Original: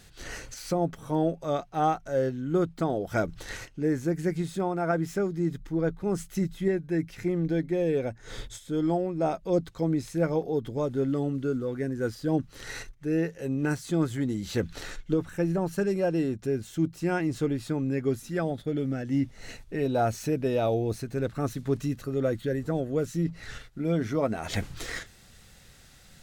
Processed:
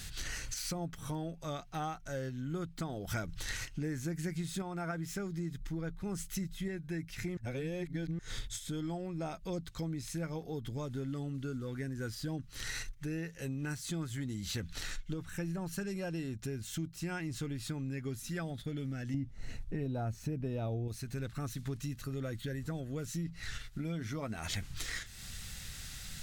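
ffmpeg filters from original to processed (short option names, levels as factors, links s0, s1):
-filter_complex "[0:a]asettb=1/sr,asplit=3[s0][s1][s2];[s0]atrim=end=19.144[s3];[s1]atrim=start=19.14:end=20.88,asetpts=PTS-STARTPTS,afade=t=in:d=0.004:c=qsin,afade=t=out:st=1.736:d=0.004:c=qsin,tiltshelf=f=1200:g=8[s4];[s2]atrim=start=20.876[s5];[s3][s4]acrossfade=d=0.004:c1=hsin:c2=qsin[s6];[s6][s5]acrossfade=d=0.004:c1=qsin:c2=hsin,asplit=5[s7][s8][s9][s10][s11];[s7]atrim=end=3.082[s12];[s8]atrim=start=3.078:end=4.622,asetpts=PTS-STARTPTS,volume=1.78[s13];[s9]atrim=start=4.618:end=7.372[s14];[s10]atrim=start=7.368:end=8.192,asetpts=PTS-STARTPTS,areverse[s15];[s11]atrim=start=8.188[s16];[s12][s13]acrossfade=d=0.004:c1=hsin:c2=hsin[s17];[s17][s14]acrossfade=d=0.004:c1=hsin:c2=hsin[s18];[s18][s15]acrossfade=d=0.004:c1=hsin:c2=hsin[s19];[s19][s16]acrossfade=d=0.004:c1=hsin:c2=hsin,equalizer=f=490:t=o:w=2.5:g=-13.5,acompressor=threshold=0.00355:ratio=4,volume=3.55"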